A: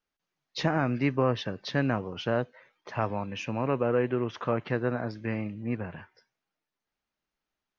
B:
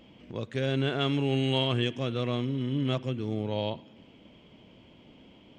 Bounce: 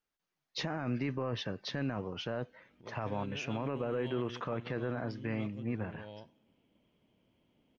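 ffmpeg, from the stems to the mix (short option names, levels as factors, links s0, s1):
-filter_complex "[0:a]volume=0.708[s0];[1:a]highshelf=f=4600:g=-8.5,adelay=2500,volume=0.133[s1];[s0][s1]amix=inputs=2:normalize=0,alimiter=level_in=1.19:limit=0.0631:level=0:latency=1:release=13,volume=0.841"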